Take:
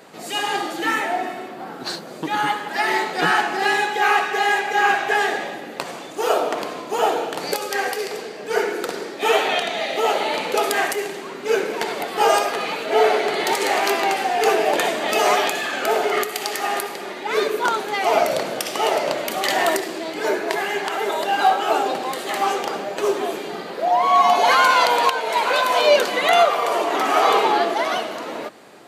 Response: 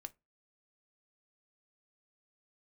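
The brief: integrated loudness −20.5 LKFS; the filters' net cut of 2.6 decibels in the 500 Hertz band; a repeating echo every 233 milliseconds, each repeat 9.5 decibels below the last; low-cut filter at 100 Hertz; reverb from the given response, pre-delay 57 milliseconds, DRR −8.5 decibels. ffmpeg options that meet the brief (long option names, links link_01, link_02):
-filter_complex "[0:a]highpass=100,equalizer=frequency=500:width_type=o:gain=-3.5,aecho=1:1:233|466|699|932:0.335|0.111|0.0365|0.012,asplit=2[link_01][link_02];[1:a]atrim=start_sample=2205,adelay=57[link_03];[link_02][link_03]afir=irnorm=-1:irlink=0,volume=14dB[link_04];[link_01][link_04]amix=inputs=2:normalize=0,volume=-8.5dB"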